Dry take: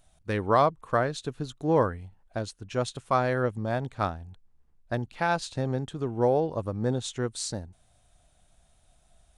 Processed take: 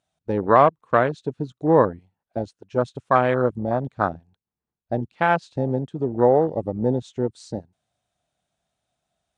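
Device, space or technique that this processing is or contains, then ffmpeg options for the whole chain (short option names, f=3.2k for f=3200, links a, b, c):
over-cleaned archive recording: -af "highpass=140,lowpass=6.7k,afwtdn=0.0316,volume=7dB"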